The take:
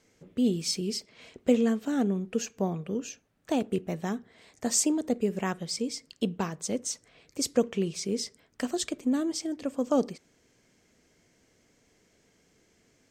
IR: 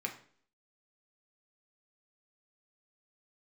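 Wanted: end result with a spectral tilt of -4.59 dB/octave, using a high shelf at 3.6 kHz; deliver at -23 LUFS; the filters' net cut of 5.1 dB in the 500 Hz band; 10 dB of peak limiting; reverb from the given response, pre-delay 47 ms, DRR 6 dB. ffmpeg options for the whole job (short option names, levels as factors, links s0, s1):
-filter_complex "[0:a]equalizer=f=500:t=o:g=-6,highshelf=f=3600:g=-4.5,alimiter=level_in=1.06:limit=0.0631:level=0:latency=1,volume=0.944,asplit=2[s0][s1];[1:a]atrim=start_sample=2205,adelay=47[s2];[s1][s2]afir=irnorm=-1:irlink=0,volume=0.398[s3];[s0][s3]amix=inputs=2:normalize=0,volume=3.76"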